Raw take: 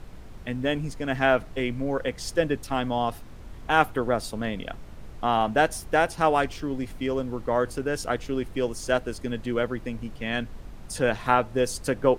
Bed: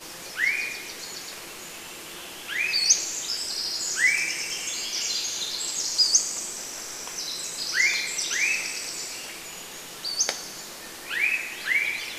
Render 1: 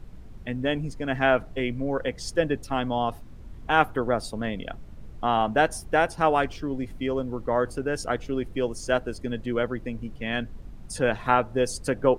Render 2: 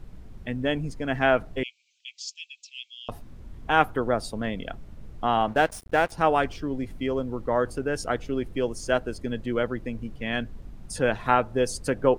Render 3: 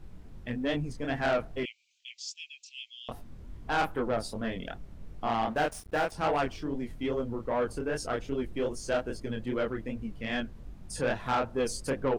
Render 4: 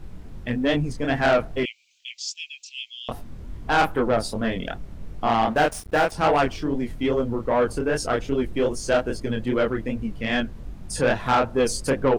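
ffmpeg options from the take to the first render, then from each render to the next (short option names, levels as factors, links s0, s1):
-af "afftdn=nr=8:nf=-43"
-filter_complex "[0:a]asettb=1/sr,asplit=3[s0][s1][s2];[s0]atrim=end=1.634[s3];[s1]atrim=start=1.63:end=3.09,asetpts=PTS-STARTPTS,afade=t=in:d=0.004:c=qsin,afade=t=out:st=1.456:d=0.004:c=qsin,asuperpass=centerf=4400:order=20:qfactor=0.83[s4];[s2]atrim=start=3.086[s5];[s3][s4]acrossfade=d=0.004:c1=hsin:c2=qsin[s6];[s6][s5]acrossfade=d=0.004:c1=qsin:c2=hsin,asettb=1/sr,asplit=3[s7][s8][s9];[s7]atrim=end=5.484[s10];[s8]atrim=start=5.48:end=6.12,asetpts=PTS-STARTPTS,afade=t=in:d=0.004:c=qsin,afade=t=out:st=0.636:d=0.004:c=qsin,aeval=exprs='sgn(val(0))*max(abs(val(0))-0.0119,0)':c=same[s11];[s9]atrim=start=6.116[s12];[s10][s11]acrossfade=d=0.004:c1=hsin:c2=qsin[s13];[s13][s12]acrossfade=d=0.004:c1=qsin:c2=hsin"
-af "flanger=delay=20:depth=7.8:speed=2.5,asoftclip=type=tanh:threshold=0.0841"
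-af "volume=2.66"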